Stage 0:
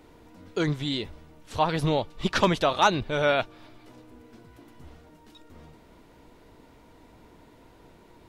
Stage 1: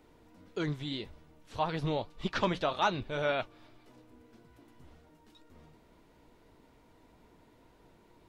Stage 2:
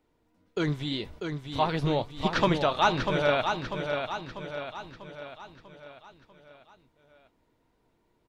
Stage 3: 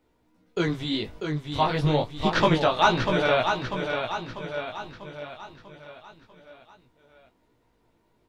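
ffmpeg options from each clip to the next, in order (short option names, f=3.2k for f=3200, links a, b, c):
-filter_complex "[0:a]flanger=delay=4.6:depth=4.6:regen=-73:speed=1.8:shape=sinusoidal,acrossover=split=5700[a][b];[b]acompressor=threshold=-59dB:ratio=4:attack=1:release=60[c];[a][c]amix=inputs=2:normalize=0,volume=-3.5dB"
-filter_complex "[0:a]agate=range=-16dB:threshold=-52dB:ratio=16:detection=peak,asplit=2[a][b];[b]aecho=0:1:644|1288|1932|2576|3220|3864:0.501|0.256|0.13|0.0665|0.0339|0.0173[c];[a][c]amix=inputs=2:normalize=0,volume=5.5dB"
-af "flanger=delay=16:depth=4.3:speed=0.28,volume=6.5dB"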